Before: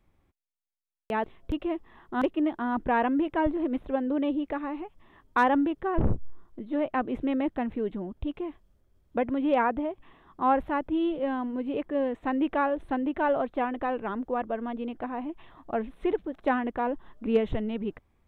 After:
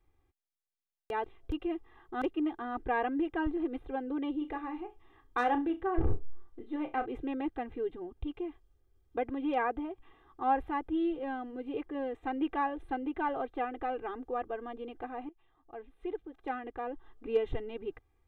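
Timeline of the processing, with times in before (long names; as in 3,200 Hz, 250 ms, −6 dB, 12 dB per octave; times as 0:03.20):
0:04.38–0:07.06: flutter between parallel walls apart 5.7 metres, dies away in 0.21 s
0:15.29–0:17.62: fade in, from −18 dB
whole clip: comb filter 2.5 ms, depth 89%; level −8 dB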